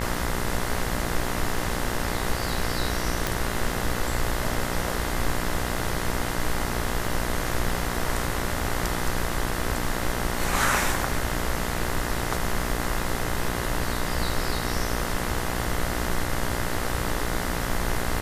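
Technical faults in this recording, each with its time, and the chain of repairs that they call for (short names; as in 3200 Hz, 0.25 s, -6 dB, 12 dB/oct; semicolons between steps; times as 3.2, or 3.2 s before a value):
buzz 60 Hz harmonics 35 -31 dBFS
3.27 pop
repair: de-click; de-hum 60 Hz, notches 35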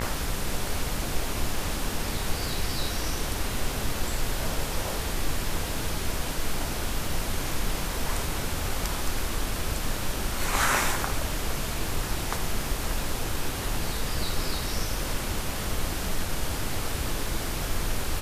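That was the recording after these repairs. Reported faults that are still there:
none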